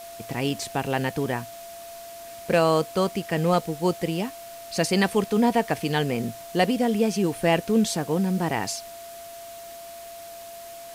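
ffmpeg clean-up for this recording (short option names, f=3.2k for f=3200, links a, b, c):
-af "adeclick=t=4,bandreject=f=680:w=30,afftdn=nr=28:nf=-41"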